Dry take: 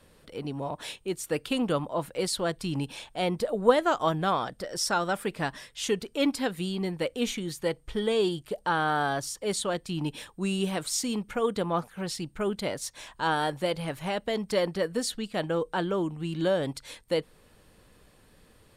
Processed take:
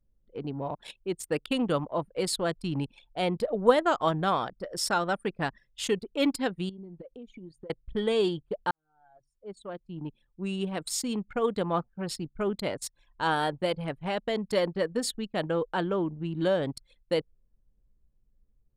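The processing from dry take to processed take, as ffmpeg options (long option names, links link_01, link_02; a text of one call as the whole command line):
ffmpeg -i in.wav -filter_complex "[0:a]asettb=1/sr,asplit=3[link_01][link_02][link_03];[link_01]atrim=end=6.694[link_04];[link_02]atrim=start=6.69:end=7.7,asetpts=PTS-STARTPTS,afade=type=in:duration=0.004:curve=qsin,afade=type=out:start_time=1.006:duration=0.004:curve=qsin,acompressor=threshold=-37dB:ratio=16:attack=3.2:release=140:knee=1:detection=peak[link_05];[link_03]atrim=start=7.696[link_06];[link_04][link_05]acrossfade=duration=0.004:curve1=hsin:curve2=qsin[link_07];[link_07][link_06]acrossfade=duration=0.004:curve1=qsin:curve2=hsin,asplit=2[link_08][link_09];[link_08]atrim=end=8.71,asetpts=PTS-STARTPTS,afade=type=out:start_time=8.706:duration=0.004:curve=hsin[link_10];[link_09]atrim=start=8.71,asetpts=PTS-STARTPTS,afade=type=in:duration=2.6[link_11];[link_10][link_11]concat=n=2:v=0:a=1,anlmdn=3.98,bandreject=frequency=5900:width=9.5" out.wav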